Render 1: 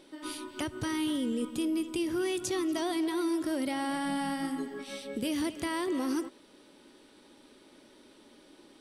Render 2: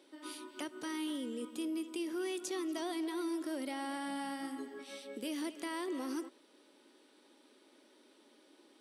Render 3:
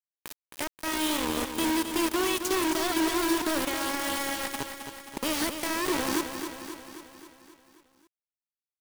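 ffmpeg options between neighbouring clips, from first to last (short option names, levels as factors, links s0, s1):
-af "highpass=f=250:w=0.5412,highpass=f=250:w=1.3066,volume=0.473"
-filter_complex "[0:a]acrusher=bits=5:mix=0:aa=0.000001,asplit=2[s0][s1];[s1]aecho=0:1:266|532|798|1064|1330|1596|1862:0.398|0.235|0.139|0.0818|0.0482|0.0285|0.0168[s2];[s0][s2]amix=inputs=2:normalize=0,volume=2.51"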